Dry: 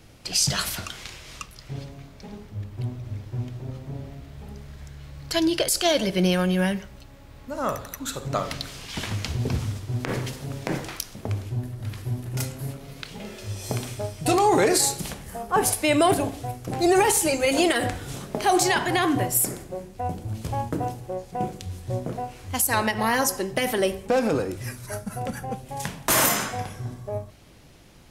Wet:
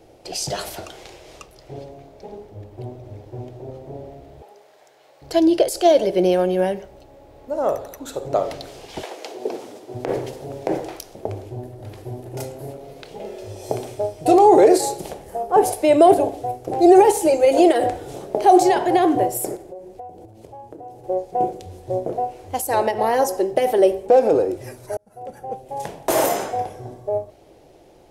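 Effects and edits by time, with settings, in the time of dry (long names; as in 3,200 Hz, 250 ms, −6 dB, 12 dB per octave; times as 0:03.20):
0:04.42–0:05.22: high-pass filter 680 Hz
0:09.02–0:09.94: high-pass filter 420 Hz → 190 Hz 24 dB per octave
0:19.56–0:21.04: downward compressor 16 to 1, threshold −39 dBFS
0:24.97–0:25.92: fade in
whole clip: flat-topped bell 520 Hz +14.5 dB; level −5.5 dB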